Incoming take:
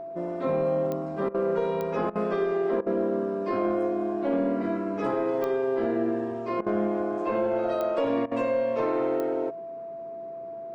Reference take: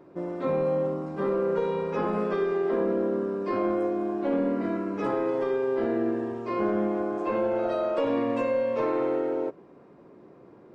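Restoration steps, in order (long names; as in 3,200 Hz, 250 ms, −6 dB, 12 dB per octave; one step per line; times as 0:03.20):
click removal
notch filter 670 Hz, Q 30
repair the gap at 0:01.29/0:02.10/0:02.81/0:06.61/0:08.26, 53 ms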